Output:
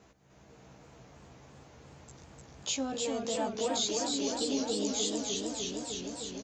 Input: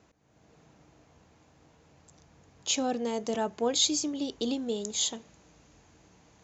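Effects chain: compressor 2:1, threshold -41 dBFS, peak gain reduction 11 dB; doubler 15 ms -2.5 dB; warbling echo 0.304 s, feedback 80%, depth 114 cents, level -3.5 dB; gain +1.5 dB

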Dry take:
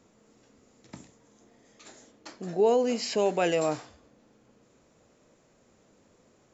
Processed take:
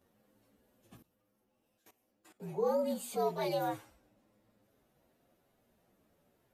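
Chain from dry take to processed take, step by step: inharmonic rescaling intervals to 118%; 0.97–2.4 level quantiser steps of 18 dB; gain -6 dB

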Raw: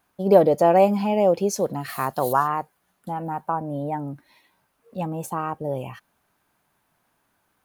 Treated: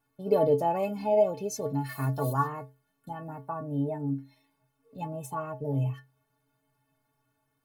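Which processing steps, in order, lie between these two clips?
low shelf 410 Hz +9.5 dB; metallic resonator 130 Hz, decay 0.36 s, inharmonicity 0.03; gain +2.5 dB

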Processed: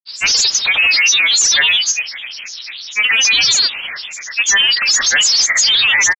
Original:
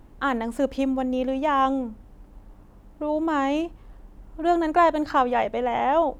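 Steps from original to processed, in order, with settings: overdrive pedal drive 37 dB, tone 1200 Hz, clips at -7.5 dBFS; inverted band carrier 3900 Hz; reverb RT60 1.6 s, pre-delay 0.187 s, DRR 15 dB; grains, pitch spread up and down by 12 st; gain +3.5 dB

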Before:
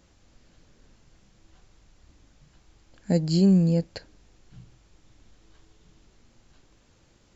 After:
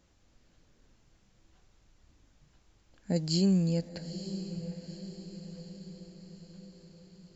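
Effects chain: 3.16–3.89 high shelf 2200 Hz +10 dB; on a send: diffused feedback echo 0.919 s, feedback 55%, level -11 dB; on the sum: gain -7 dB

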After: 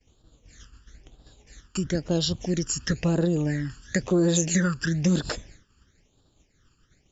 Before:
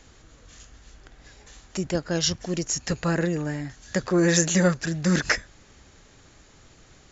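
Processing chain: expander -42 dBFS; compressor 3:1, threshold -24 dBFS, peak gain reduction 7 dB; phaser stages 12, 1 Hz, lowest notch 650–2100 Hz; gain +4 dB

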